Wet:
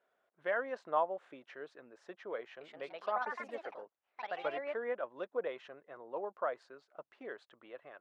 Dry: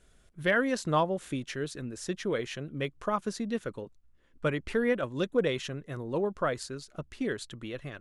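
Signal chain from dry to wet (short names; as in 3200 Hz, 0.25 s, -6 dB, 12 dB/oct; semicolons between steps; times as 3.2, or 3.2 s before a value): ladder band-pass 880 Hz, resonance 30%; 2.42–4.96 echoes that change speed 0.188 s, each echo +3 st, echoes 3; gain +5.5 dB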